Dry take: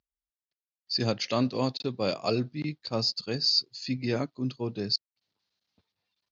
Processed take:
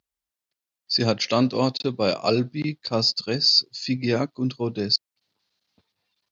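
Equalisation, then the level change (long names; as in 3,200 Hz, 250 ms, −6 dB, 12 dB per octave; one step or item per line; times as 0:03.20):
low-shelf EQ 62 Hz −8 dB
+6.5 dB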